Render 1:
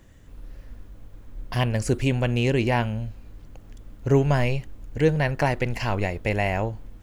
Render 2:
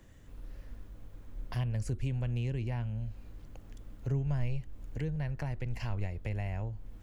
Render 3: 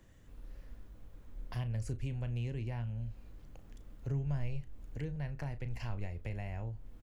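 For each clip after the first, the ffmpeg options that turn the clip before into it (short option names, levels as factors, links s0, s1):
-filter_complex "[0:a]acrossover=split=140[s0][s1];[s1]acompressor=threshold=0.0112:ratio=4[s2];[s0][s2]amix=inputs=2:normalize=0,volume=0.596"
-filter_complex "[0:a]asplit=2[s0][s1];[s1]adelay=35,volume=0.251[s2];[s0][s2]amix=inputs=2:normalize=0,volume=0.631"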